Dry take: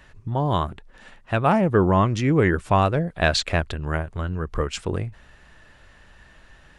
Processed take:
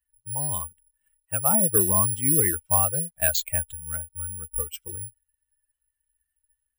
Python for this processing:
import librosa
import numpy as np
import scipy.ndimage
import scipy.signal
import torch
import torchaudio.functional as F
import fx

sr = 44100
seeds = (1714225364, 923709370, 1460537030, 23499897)

y = fx.bin_expand(x, sr, power=2.0)
y = (np.kron(scipy.signal.resample_poly(y, 1, 4), np.eye(4)[0]) * 4)[:len(y)]
y = y * librosa.db_to_amplitude(-5.5)